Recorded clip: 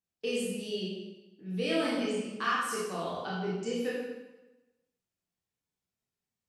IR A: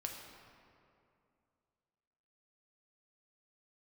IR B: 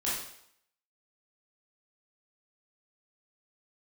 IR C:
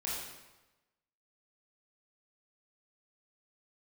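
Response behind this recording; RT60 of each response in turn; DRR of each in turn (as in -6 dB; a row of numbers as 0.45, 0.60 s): C; 2.5, 0.70, 1.1 s; 1.0, -8.0, -7.0 dB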